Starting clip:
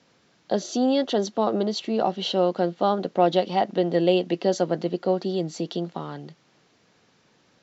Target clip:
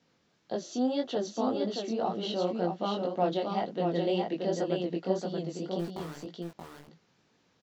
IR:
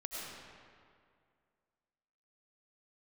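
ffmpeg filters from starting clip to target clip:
-filter_complex "[0:a]lowshelf=frequency=230:gain=3.5,asettb=1/sr,asplit=3[link_01][link_02][link_03];[link_01]atrim=end=5.794[link_04];[link_02]atrim=start=5.79:end=6.25,asetpts=PTS-STARTPTS,afade=type=in:duration=0.004:curve=qsin,afade=type=out:start_time=0.456:duration=0.004:curve=qsin,aeval=exprs='val(0)*gte(abs(val(0)),0.0282)':channel_layout=same[link_05];[link_03]atrim=start=6.246[link_06];[link_04][link_05]acrossfade=duration=0.004:curve1=hsin:curve2=qsin[link_07];[link_07][link_06]acrossfade=duration=0.004:curve1=qsin:curve2=hsin,flanger=delay=17:depth=7.3:speed=1.9,asplit=2[link_08][link_09];[link_09]aecho=0:1:628:0.631[link_10];[link_08][link_10]amix=inputs=2:normalize=0,volume=-6.5dB"

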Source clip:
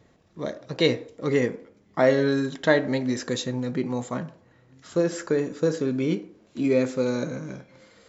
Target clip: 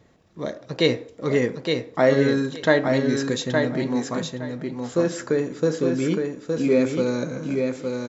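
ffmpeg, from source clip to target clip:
ffmpeg -i in.wav -af "aecho=1:1:865|1730|2595:0.596|0.113|0.0215,volume=1.5dB" out.wav

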